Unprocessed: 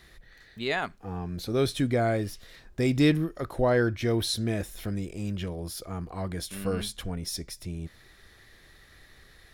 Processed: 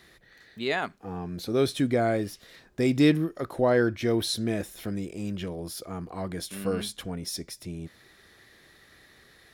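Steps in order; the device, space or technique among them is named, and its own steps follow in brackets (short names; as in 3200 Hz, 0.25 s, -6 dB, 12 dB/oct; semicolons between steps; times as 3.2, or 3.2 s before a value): filter by subtraction (in parallel: LPF 250 Hz 12 dB/oct + phase invert)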